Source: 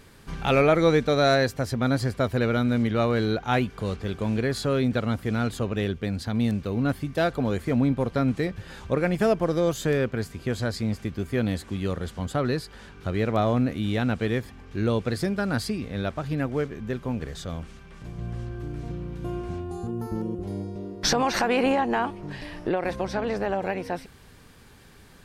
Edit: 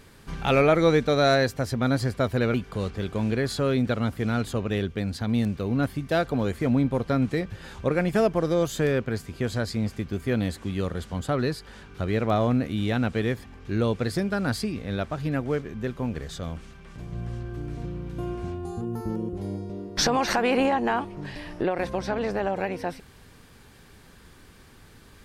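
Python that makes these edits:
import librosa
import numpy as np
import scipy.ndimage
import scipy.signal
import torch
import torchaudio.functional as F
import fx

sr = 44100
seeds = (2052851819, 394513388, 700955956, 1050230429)

y = fx.edit(x, sr, fx.cut(start_s=2.54, length_s=1.06), tone=tone)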